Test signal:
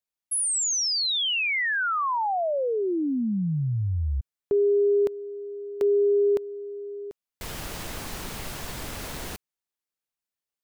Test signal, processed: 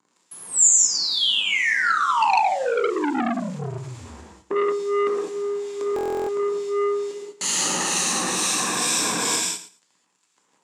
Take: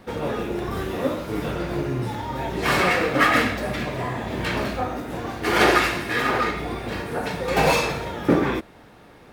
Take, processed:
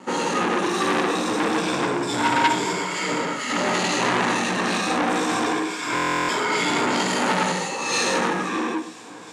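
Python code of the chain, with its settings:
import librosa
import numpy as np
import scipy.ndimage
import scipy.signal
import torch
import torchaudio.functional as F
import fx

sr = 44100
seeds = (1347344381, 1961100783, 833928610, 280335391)

y = fx.spec_ripple(x, sr, per_octave=1.7, drift_hz=-0.27, depth_db=11)
y = fx.high_shelf(y, sr, hz=4700.0, db=9.0)
y = fx.over_compress(y, sr, threshold_db=-27.0, ratio=-1.0)
y = fx.dmg_noise_colour(y, sr, seeds[0], colour='pink', level_db=-52.0)
y = np.sign(y) * np.maximum(np.abs(y) - 10.0 ** (-45.0 / 20.0), 0.0)
y = fx.harmonic_tremolo(y, sr, hz=2.2, depth_pct=70, crossover_hz=2000.0)
y = fx.cabinet(y, sr, low_hz=160.0, low_slope=24, high_hz=8900.0, hz=(300.0, 630.0, 1000.0, 7200.0), db=(3, -5, 7, 9))
y = fx.doubler(y, sr, ms=17.0, db=-12.5)
y = fx.echo_feedback(y, sr, ms=112, feedback_pct=16, wet_db=-14.0)
y = fx.rev_gated(y, sr, seeds[1], gate_ms=230, shape='flat', drr_db=-3.5)
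y = fx.buffer_glitch(y, sr, at_s=(5.94,), block=1024, repeats=14)
y = fx.transformer_sat(y, sr, knee_hz=2200.0)
y = y * librosa.db_to_amplitude(4.5)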